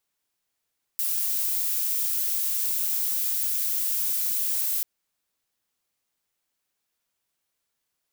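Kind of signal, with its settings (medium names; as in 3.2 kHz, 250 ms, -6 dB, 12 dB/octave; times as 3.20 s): noise violet, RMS -26 dBFS 3.84 s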